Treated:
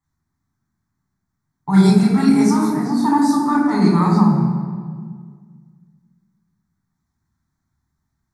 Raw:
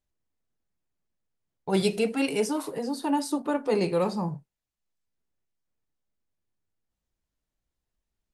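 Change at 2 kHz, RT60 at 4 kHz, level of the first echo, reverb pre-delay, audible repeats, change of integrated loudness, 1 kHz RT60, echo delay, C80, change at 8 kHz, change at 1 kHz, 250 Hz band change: +6.5 dB, 1.2 s, no echo, 3 ms, no echo, +12.0 dB, 1.7 s, no echo, 4.0 dB, +5.5 dB, +12.5 dB, +15.5 dB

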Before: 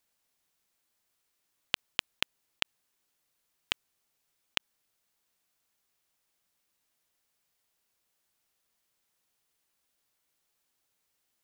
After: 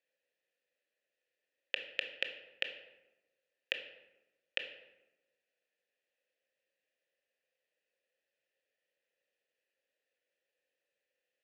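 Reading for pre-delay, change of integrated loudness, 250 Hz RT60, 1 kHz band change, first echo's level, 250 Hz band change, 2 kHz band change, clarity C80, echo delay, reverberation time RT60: 19 ms, -4.5 dB, 1.2 s, -14.0 dB, no echo, -10.0 dB, -1.0 dB, 11.5 dB, no echo, 1.0 s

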